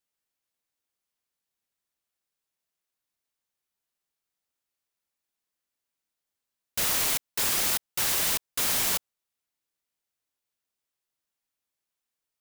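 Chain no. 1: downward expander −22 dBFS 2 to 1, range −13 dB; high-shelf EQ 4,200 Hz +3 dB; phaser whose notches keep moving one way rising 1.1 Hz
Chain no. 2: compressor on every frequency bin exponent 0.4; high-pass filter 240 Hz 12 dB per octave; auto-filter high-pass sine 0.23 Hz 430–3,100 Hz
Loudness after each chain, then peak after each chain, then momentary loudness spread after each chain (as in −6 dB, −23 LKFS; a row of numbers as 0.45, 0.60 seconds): −24.0, −20.5 LKFS; −12.0, −8.0 dBFS; 4, 4 LU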